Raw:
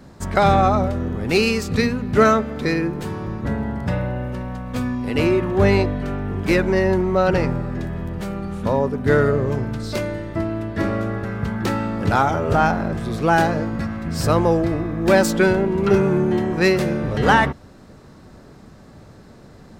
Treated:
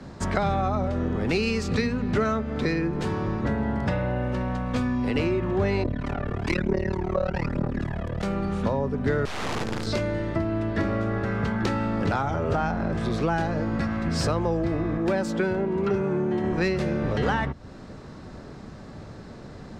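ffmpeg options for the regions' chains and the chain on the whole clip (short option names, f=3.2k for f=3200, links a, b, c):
-filter_complex "[0:a]asettb=1/sr,asplit=3[a][b][c];[a]atrim=end=5.834[d];[b]atrim=start=5.83:end=8.23,asetpts=PTS-STARTPTS,afade=t=in:d=0.004:c=qsin,afade=t=out:st=2.396:d=0.004:c=qsin,aphaser=in_gain=1:out_gain=1:delay=1.9:decay=0.61:speed=1.1:type=triangular,tremolo=f=37:d=0.974[e];[c]atrim=start=8.226[f];[d][e]acrossfade=d=0.004:c1=hsin:c2=qsin[g];[g][f]acrossfade=d=0.004:c1=qsin:c2=hsin,asettb=1/sr,asplit=3[h][i][j];[h]atrim=end=9.254[k];[i]atrim=start=9.25:end=9.87,asetpts=PTS-STARTPTS,afade=t=in:d=0.004:c=qsin,afade=t=out:st=0.616:d=0.004:c=qsin,highpass=f=45:p=1,aeval=exprs='(mod(9.44*val(0)+1,2)-1)/9.44':c=same,acrusher=bits=4:dc=4:mix=0:aa=0.000001[l];[j]atrim=start=9.866[m];[k][l]acrossfade=d=0.004:c1=hsin:c2=qsin[n];[n][m]acrossfade=d=0.004:c1=qsin:c2=hsin,asettb=1/sr,asplit=3[o][p][q];[o]atrim=end=14.974[r];[p]atrim=start=14.97:end=16.44,asetpts=PTS-STARTPTS,afade=t=in:d=0.004:c=qsin,afade=t=out:st=1.466:d=0.004:c=qsin,highpass=f=220:p=1,equalizer=f=4.7k:w=0.43:g=-4.5[s];[q]atrim=start=16.436[t];[r][s]acrossfade=d=0.004:c1=hsin:c2=qsin[u];[u][t]acrossfade=d=0.004:c1=qsin:c2=hsin,lowpass=6.6k,acrossover=split=81|210[v][w][x];[v]acompressor=threshold=-37dB:ratio=4[y];[w]acompressor=threshold=-35dB:ratio=4[z];[x]acompressor=threshold=-29dB:ratio=4[aa];[y][z][aa]amix=inputs=3:normalize=0,volume=3dB"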